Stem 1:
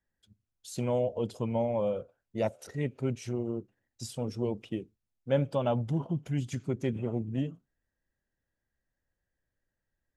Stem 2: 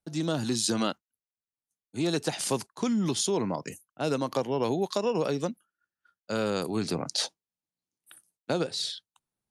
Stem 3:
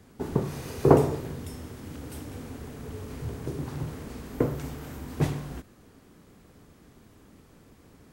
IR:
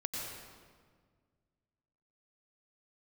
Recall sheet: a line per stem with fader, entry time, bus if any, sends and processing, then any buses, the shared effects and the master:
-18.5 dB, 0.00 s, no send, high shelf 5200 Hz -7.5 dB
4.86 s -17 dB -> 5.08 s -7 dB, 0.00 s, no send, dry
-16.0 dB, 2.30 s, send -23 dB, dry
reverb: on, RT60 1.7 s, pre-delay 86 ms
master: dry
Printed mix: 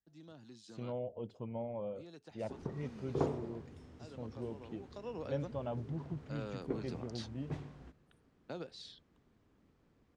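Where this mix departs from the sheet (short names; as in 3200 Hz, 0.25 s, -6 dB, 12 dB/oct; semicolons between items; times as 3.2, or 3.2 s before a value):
stem 1 -18.5 dB -> -11.0 dB; stem 2 -17.0 dB -> -25.5 dB; master: extra air absorption 110 m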